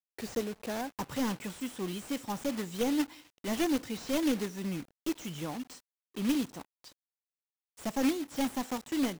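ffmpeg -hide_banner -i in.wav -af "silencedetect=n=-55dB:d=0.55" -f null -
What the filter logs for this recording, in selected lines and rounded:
silence_start: 6.93
silence_end: 7.77 | silence_duration: 0.85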